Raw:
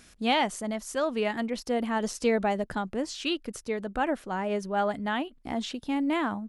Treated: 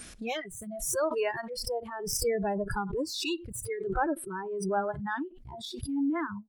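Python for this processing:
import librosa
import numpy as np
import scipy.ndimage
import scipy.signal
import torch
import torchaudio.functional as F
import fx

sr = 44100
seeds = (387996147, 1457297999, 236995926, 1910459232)

p1 = fx.tracing_dist(x, sr, depth_ms=0.041)
p2 = fx.dynamic_eq(p1, sr, hz=6900.0, q=1.6, threshold_db=-54.0, ratio=4.0, max_db=-6)
p3 = fx.rotary_switch(p2, sr, hz=0.6, then_hz=5.5, switch_at_s=3.26)
p4 = p3 + fx.echo_single(p3, sr, ms=90, db=-23.0, dry=0)
p5 = fx.noise_reduce_blind(p4, sr, reduce_db=29)
y = fx.pre_swell(p5, sr, db_per_s=44.0)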